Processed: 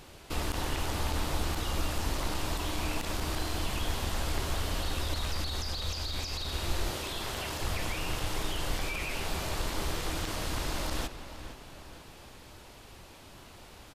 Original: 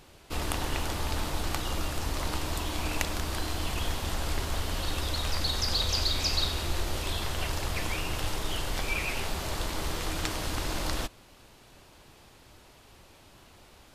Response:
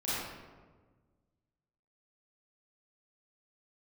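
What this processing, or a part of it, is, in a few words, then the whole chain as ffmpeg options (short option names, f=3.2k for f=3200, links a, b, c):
de-esser from a sidechain: -filter_complex "[0:a]asettb=1/sr,asplit=3[a][b][c];[a]atrim=end=6.904[d];[b]atrim=start=6.9:end=7.61,asetpts=PTS-STARTPTS,afade=t=in:d=0.004:c=qsin,afade=t=out:st=0.706:d=0.004:c=qsin,highpass=f=140:p=1[e];[c]atrim=start=7.606[f];[d][e]acrossfade=d=0.004:c1=hsin:c2=qsin[g];[g][f]acrossfade=d=0.004:c1=qsin:c2=hsin,asplit=2[h][i];[i]highpass=f=4.2k:p=1,apad=whole_len=614808[j];[h][j]sidechaincompress=threshold=-43dB:ratio=8:attack=2.3:release=25,asplit=2[k][l];[l]adelay=464,lowpass=f=4.1k:p=1,volume=-11.5dB,asplit=2[m][n];[n]adelay=464,lowpass=f=4.1k:p=1,volume=0.48,asplit=2[o][p];[p]adelay=464,lowpass=f=4.1k:p=1,volume=0.48,asplit=2[q][r];[r]adelay=464,lowpass=f=4.1k:p=1,volume=0.48,asplit=2[s][t];[t]adelay=464,lowpass=f=4.1k:p=1,volume=0.48[u];[k][m][o][q][s][u]amix=inputs=6:normalize=0,volume=3.5dB"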